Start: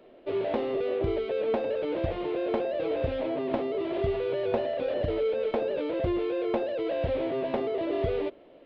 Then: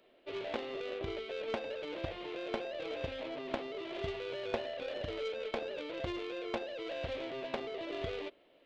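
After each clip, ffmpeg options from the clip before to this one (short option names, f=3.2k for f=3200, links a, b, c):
-af "tiltshelf=f=1.4k:g=-7.5,aeval=exprs='0.1*(cos(1*acos(clip(val(0)/0.1,-1,1)))-cos(1*PI/2))+0.00251*(cos(2*acos(clip(val(0)/0.1,-1,1)))-cos(2*PI/2))+0.0224*(cos(3*acos(clip(val(0)/0.1,-1,1)))-cos(3*PI/2))+0.00126*(cos(5*acos(clip(val(0)/0.1,-1,1)))-cos(5*PI/2))':c=same,volume=1dB"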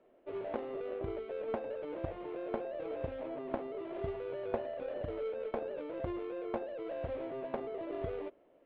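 -af "lowpass=1.2k,volume=1dB"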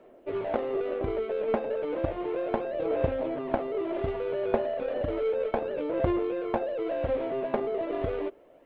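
-af "aphaser=in_gain=1:out_gain=1:delay=4.9:decay=0.3:speed=0.33:type=sinusoidal,volume=9dB"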